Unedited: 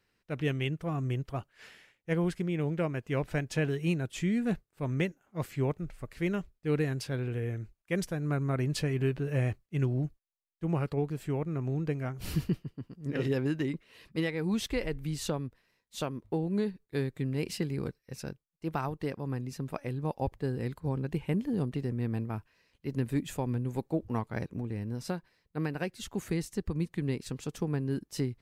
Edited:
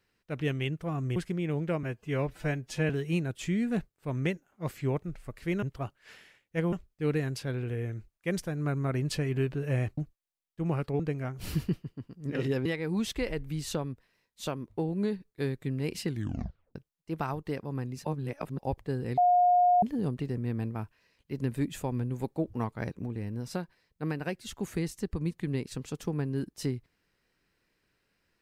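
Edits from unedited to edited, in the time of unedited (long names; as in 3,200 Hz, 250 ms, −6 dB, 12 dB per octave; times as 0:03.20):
0:01.16–0:02.26: move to 0:06.37
0:02.93–0:03.64: time-stretch 1.5×
0:09.62–0:10.01: remove
0:11.03–0:11.80: remove
0:13.46–0:14.20: remove
0:17.61: tape stop 0.69 s
0:19.59–0:20.13: reverse
0:20.72–0:21.37: beep over 715 Hz −19 dBFS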